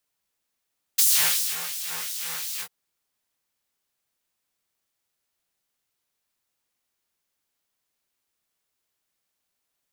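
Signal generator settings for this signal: synth patch with filter wobble E3, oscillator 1 triangle, oscillator 2 square, interval -12 st, oscillator 2 level -15.5 dB, noise -12 dB, filter highpass, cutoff 1.8 kHz, Q 1, filter envelope 1 oct, filter decay 0.58 s, filter sustain 30%, attack 11 ms, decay 0.58 s, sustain -14.5 dB, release 0.07 s, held 1.63 s, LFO 2.8 Hz, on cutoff 1 oct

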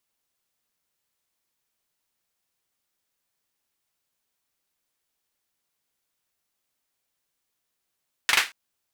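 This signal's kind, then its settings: hand clap length 0.23 s, bursts 3, apart 41 ms, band 2 kHz, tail 0.24 s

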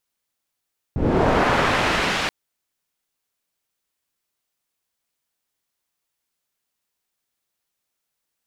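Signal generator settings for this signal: swept filtered noise white, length 1.33 s lowpass, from 140 Hz, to 2.9 kHz, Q 0.79, linear, gain ramp -15 dB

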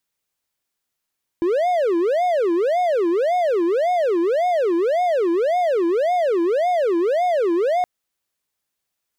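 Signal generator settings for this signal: siren wail 334–726 Hz 1.8 per s triangle -14 dBFS 6.42 s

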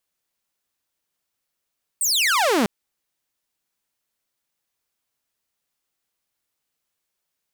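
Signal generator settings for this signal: laser zap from 9 kHz, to 190 Hz, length 0.65 s saw, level -14 dB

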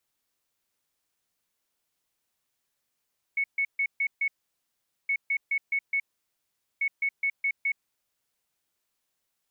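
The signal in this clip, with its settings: beep pattern sine 2.21 kHz, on 0.07 s, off 0.14 s, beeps 5, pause 0.81 s, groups 3, -23 dBFS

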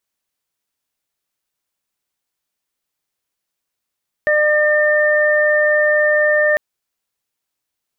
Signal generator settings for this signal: steady additive tone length 2.30 s, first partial 602 Hz, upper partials -16/-0.5 dB, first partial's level -14 dB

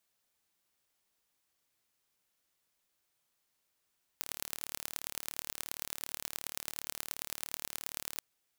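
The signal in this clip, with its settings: pulse train 37.2 per s, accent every 4, -8 dBFS 4.00 s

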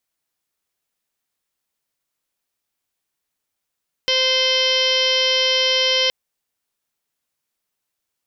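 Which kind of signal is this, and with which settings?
steady additive tone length 2.02 s, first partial 519 Hz, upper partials -11/-11/-2.5/-7/4.5/-9/-5/-7.5/-2.5/-10 dB, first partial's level -22.5 dB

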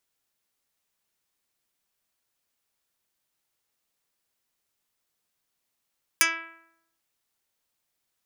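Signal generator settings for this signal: plucked string E4, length 0.79 s, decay 0.84 s, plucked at 0.08, dark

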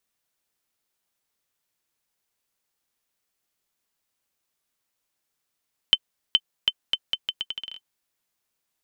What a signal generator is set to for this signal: bouncing ball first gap 0.42 s, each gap 0.78, 3.07 kHz, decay 50 ms -4 dBFS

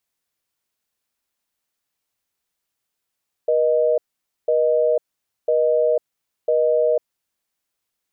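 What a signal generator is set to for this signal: call progress tone busy tone, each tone -17.5 dBFS 3.70 s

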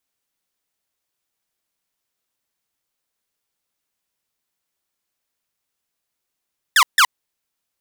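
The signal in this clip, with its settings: burst of laser zaps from 1.9 kHz, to 930 Hz, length 0.07 s saw, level -7 dB, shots 2, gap 0.15 s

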